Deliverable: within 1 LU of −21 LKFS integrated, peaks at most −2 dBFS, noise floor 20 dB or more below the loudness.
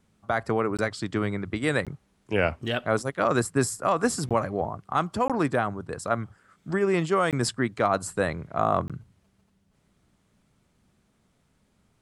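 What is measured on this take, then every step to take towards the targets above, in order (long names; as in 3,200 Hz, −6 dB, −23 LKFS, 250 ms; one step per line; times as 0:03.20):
number of dropouts 6; longest dropout 17 ms; integrated loudness −27.0 LKFS; sample peak −9.0 dBFS; target loudness −21.0 LKFS
→ repair the gap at 0:00.77/0:01.85/0:04.29/0:05.28/0:07.31/0:08.88, 17 ms
level +6 dB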